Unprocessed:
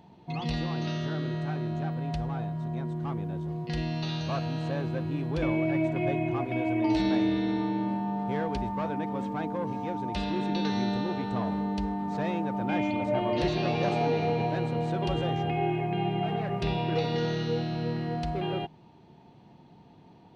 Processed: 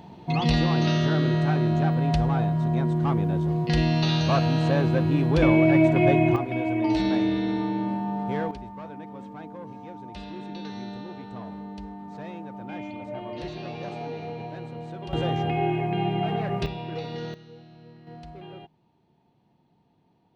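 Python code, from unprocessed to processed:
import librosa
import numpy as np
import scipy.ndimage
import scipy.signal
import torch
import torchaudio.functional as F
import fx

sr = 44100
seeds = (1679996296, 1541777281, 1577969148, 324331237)

y = fx.gain(x, sr, db=fx.steps((0.0, 9.0), (6.36, 2.0), (8.51, -8.0), (15.13, 3.0), (16.66, -5.5), (17.34, -18.0), (18.07, -11.5)))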